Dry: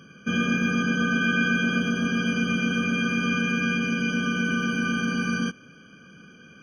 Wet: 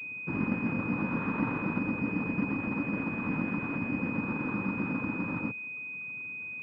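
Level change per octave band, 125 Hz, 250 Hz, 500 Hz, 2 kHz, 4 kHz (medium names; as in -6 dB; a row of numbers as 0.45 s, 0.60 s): -5.5 dB, -6.5 dB, -5.5 dB, -10.0 dB, under -25 dB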